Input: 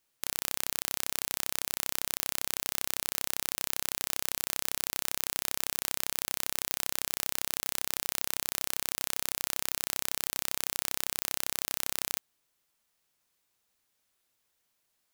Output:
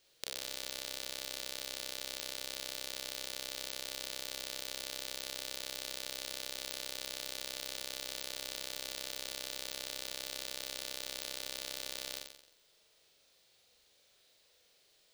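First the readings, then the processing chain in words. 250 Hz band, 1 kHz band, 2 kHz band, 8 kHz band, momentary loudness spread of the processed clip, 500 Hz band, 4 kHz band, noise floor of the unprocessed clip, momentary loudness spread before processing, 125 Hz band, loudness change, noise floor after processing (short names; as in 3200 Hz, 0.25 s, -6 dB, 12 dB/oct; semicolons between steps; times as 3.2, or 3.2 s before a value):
-7.5 dB, -10.0 dB, -7.0 dB, -10.0 dB, 0 LU, -2.0 dB, -2.5 dB, -77 dBFS, 0 LU, -11.5 dB, -8.5 dB, -69 dBFS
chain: ten-band EQ 250 Hz -5 dB, 500 Hz +11 dB, 1000 Hz -6 dB, 4000 Hz +9 dB, 16000 Hz -9 dB; compressor, threshold -43 dBFS, peak gain reduction 16.5 dB; flutter echo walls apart 7.6 m, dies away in 0.74 s; gain +5.5 dB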